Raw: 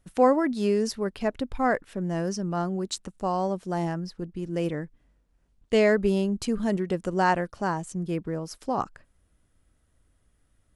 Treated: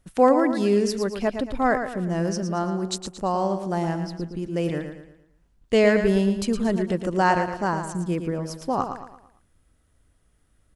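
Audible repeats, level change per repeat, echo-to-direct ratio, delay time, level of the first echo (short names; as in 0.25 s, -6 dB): 4, -7.5 dB, -7.0 dB, 0.113 s, -8.0 dB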